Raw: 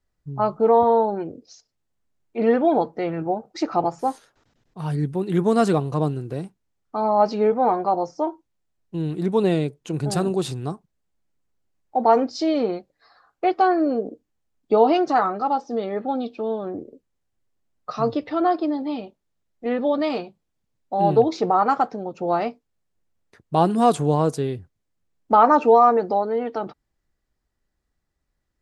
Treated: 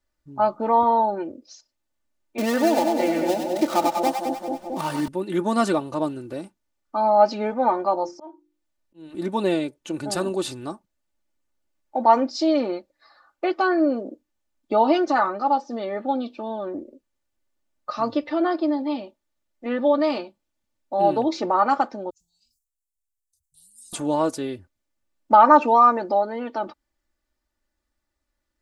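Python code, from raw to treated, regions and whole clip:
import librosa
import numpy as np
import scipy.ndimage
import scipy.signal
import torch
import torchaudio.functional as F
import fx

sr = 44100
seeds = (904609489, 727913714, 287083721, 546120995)

y = fx.chain(x, sr, fx.dead_time(dead_ms=0.11),
    fx.echo_split(split_hz=680.0, low_ms=222, high_ms=97, feedback_pct=52, wet_db=-5),
    fx.band_squash(depth_pct=70), at=(2.38, 5.08))
y = fx.chain(y, sr, fx.hum_notches(base_hz=50, count=9),
    fx.auto_swell(attack_ms=441.0), at=(7.95, 9.15))
y = fx.chain(y, sr, fx.cheby2_bandstop(low_hz=290.0, high_hz=2000.0, order=4, stop_db=70),
    fx.low_shelf(hz=460.0, db=-9.5),
    fx.sustainer(db_per_s=72.0), at=(22.1, 23.93))
y = fx.low_shelf(y, sr, hz=290.0, db=-7.0)
y = y + 0.67 * np.pad(y, (int(3.4 * sr / 1000.0), 0))[:len(y)]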